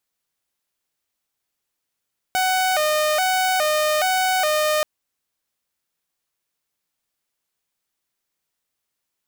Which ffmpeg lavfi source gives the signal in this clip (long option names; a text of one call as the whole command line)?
ffmpeg -f lavfi -i "aevalsrc='0.178*(2*mod((679*t+68/1.2*(0.5-abs(mod(1.2*t,1)-0.5))),1)-1)':duration=2.48:sample_rate=44100" out.wav